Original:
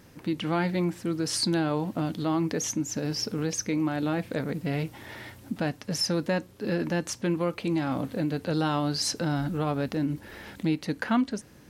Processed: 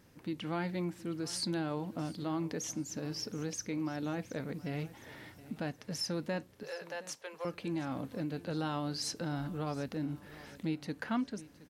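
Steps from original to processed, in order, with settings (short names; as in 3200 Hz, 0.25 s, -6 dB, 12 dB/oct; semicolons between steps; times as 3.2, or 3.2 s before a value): 6.63–7.45 steep high-pass 450 Hz 48 dB/oct; on a send: feedback echo 0.719 s, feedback 41%, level -18.5 dB; on the sum: gain -9 dB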